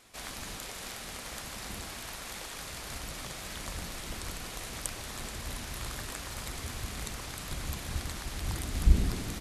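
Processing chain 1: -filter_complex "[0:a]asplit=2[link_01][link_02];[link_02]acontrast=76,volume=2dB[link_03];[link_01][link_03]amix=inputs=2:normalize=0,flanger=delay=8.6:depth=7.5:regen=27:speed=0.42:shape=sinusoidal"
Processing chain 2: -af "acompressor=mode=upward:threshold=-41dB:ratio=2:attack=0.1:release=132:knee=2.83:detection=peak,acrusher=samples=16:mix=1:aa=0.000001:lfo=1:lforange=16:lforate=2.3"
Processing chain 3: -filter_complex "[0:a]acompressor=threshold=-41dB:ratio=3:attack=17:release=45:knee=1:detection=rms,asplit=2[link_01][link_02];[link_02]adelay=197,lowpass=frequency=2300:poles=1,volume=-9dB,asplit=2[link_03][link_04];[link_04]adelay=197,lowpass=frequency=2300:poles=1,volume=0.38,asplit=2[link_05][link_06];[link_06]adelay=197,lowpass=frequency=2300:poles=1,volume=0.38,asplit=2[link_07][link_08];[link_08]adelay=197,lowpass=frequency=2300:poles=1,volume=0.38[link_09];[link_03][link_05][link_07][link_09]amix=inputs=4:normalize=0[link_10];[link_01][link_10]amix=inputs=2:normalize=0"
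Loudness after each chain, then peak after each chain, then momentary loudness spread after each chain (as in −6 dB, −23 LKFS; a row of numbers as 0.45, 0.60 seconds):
−29.0, −37.5, −41.0 LKFS; −5.0, −9.5, −19.5 dBFS; 7, 8, 1 LU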